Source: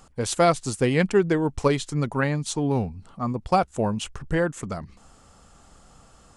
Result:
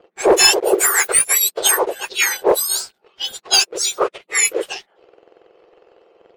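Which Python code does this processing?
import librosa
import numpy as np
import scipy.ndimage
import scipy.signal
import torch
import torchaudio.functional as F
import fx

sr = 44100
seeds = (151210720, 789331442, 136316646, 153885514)

y = fx.octave_mirror(x, sr, pivot_hz=1900.0)
y = fx.leveller(y, sr, passes=2)
y = fx.env_lowpass(y, sr, base_hz=2000.0, full_db=-17.5)
y = F.gain(torch.from_numpy(y), 7.0).numpy()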